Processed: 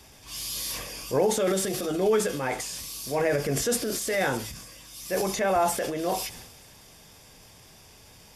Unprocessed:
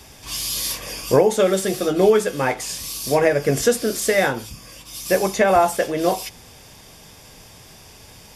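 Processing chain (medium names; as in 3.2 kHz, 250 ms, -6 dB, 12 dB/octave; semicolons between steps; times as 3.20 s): feedback echo behind a high-pass 308 ms, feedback 74%, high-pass 3.5 kHz, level -17.5 dB; transient shaper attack -5 dB, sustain +7 dB; trim -7.5 dB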